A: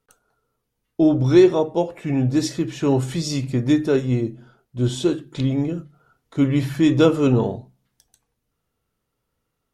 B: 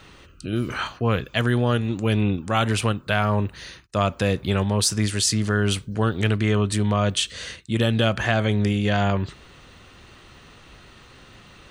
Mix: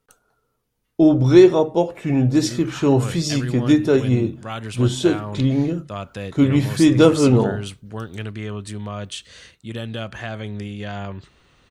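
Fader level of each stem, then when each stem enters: +2.5, −9.0 decibels; 0.00, 1.95 seconds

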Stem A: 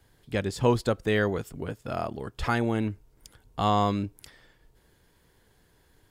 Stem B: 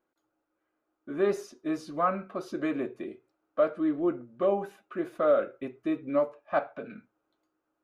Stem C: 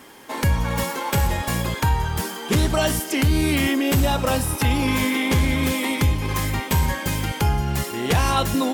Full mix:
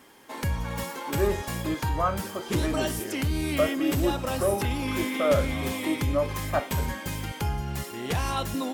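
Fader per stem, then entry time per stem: −18.0, 0.0, −8.5 decibels; 1.90, 0.00, 0.00 seconds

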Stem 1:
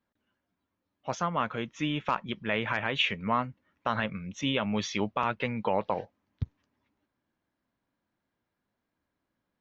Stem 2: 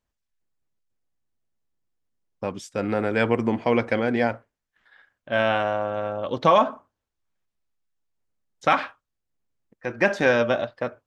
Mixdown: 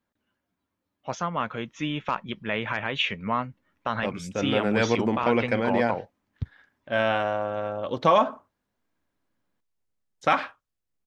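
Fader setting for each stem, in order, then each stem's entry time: +1.0, −2.0 decibels; 0.00, 1.60 seconds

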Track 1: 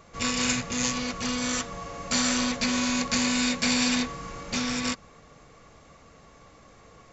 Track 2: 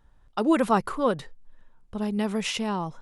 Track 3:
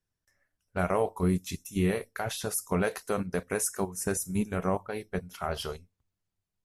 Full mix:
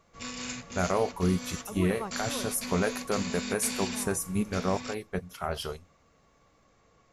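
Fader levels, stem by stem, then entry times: −11.5, −16.0, 0.0 decibels; 0.00, 1.30, 0.00 seconds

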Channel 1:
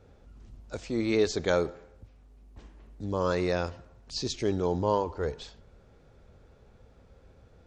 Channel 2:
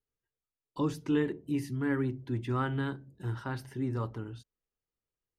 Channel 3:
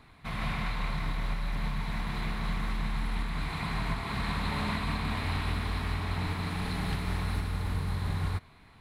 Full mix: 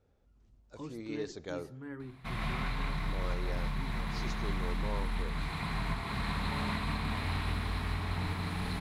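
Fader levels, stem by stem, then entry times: −14.5, −13.5, −2.5 decibels; 0.00, 0.00, 2.00 seconds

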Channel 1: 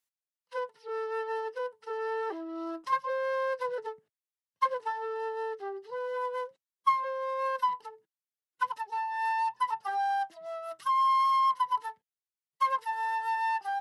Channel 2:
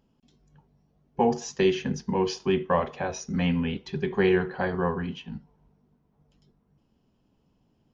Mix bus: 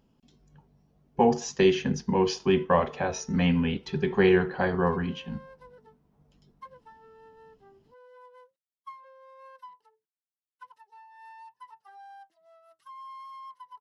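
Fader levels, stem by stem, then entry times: −19.0, +1.5 decibels; 2.00, 0.00 seconds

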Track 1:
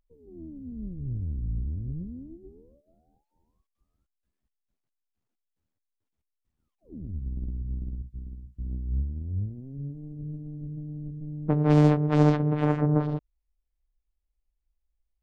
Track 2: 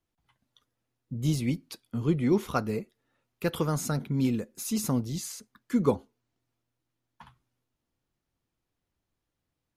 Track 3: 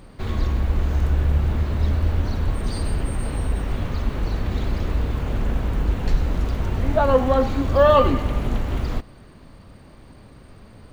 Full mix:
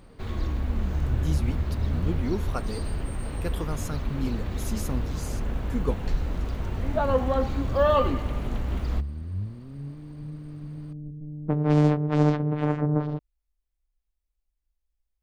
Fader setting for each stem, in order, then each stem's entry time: −1.0, −5.0, −6.5 decibels; 0.00, 0.00, 0.00 seconds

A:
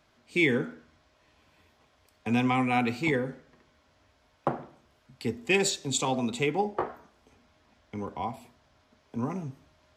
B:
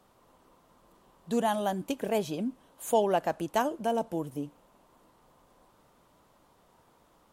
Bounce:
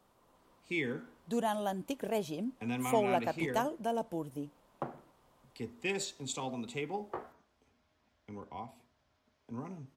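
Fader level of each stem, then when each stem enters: −10.5, −5.0 decibels; 0.35, 0.00 seconds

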